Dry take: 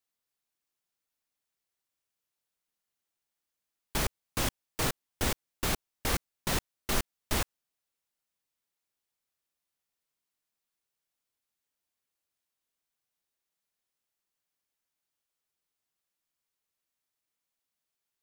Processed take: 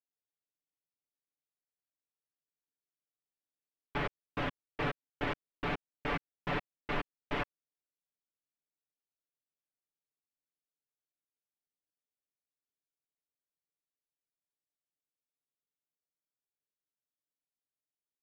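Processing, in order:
adaptive Wiener filter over 41 samples
low-pass filter 2,700 Hz 24 dB per octave
low-shelf EQ 130 Hz −9 dB
leveller curve on the samples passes 1
comb filter 6.9 ms, depth 77%
level −5 dB

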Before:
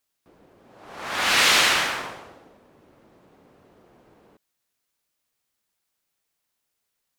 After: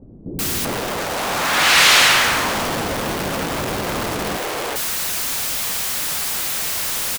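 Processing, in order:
converter with a step at zero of −20 dBFS
multiband delay without the direct sound lows, highs 390 ms, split 350 Hz
level +3.5 dB

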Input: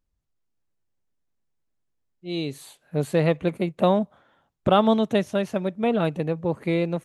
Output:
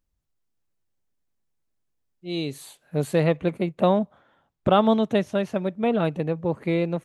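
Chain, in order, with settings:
high-shelf EQ 5,600 Hz +2.5 dB, from 0:03.24 −6 dB

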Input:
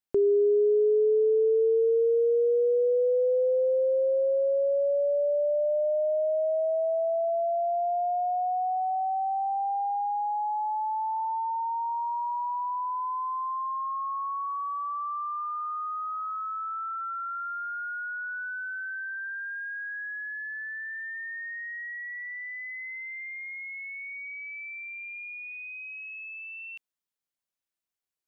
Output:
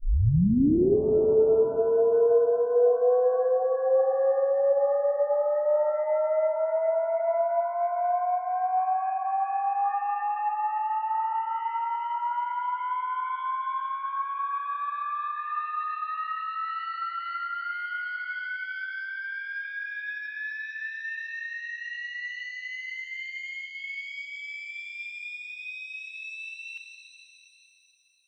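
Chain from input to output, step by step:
turntable start at the beginning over 0.96 s
reverb with rising layers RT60 3.2 s, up +7 semitones, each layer −8 dB, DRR 6 dB

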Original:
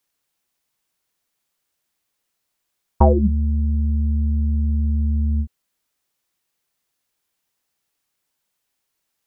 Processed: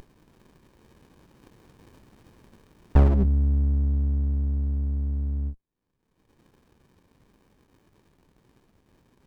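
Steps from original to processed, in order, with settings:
source passing by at 0:01.94, 18 m/s, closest 9.3 metres
low-shelf EQ 76 Hz +8 dB
in parallel at −3 dB: brickwall limiter −21 dBFS, peak gain reduction 11.5 dB
on the sum: upward compression, threshold −26 dBFS
windowed peak hold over 65 samples

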